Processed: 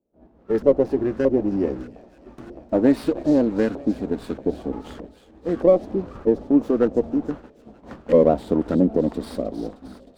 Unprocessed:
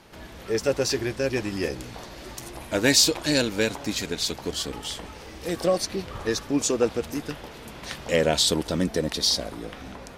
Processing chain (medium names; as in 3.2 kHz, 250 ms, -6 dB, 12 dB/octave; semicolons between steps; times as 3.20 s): graphic EQ 125/250/1000/2000/8000 Hz -5/+8/-9/-6/+10 dB; expander -29 dBFS; in parallel at -2 dB: compression, threshold -29 dBFS, peak gain reduction 18.5 dB; on the sum: LFO low-pass saw up 1.6 Hz 540–1500 Hz; on a send: feedback echo behind a high-pass 310 ms, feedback 73%, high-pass 2.7 kHz, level -11 dB; on the sum: sliding maximum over 5 samples